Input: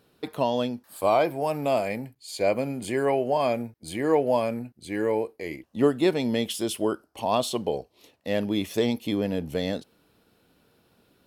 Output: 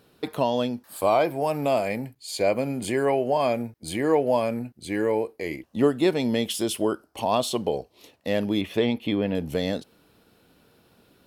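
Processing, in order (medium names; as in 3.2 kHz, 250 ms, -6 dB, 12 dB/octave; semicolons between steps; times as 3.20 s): 8.61–9.35 s: resonant high shelf 4.2 kHz -11.5 dB, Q 1.5; in parallel at -2 dB: compression, threshold -30 dBFS, peak gain reduction 14 dB; on the sum: trim -1 dB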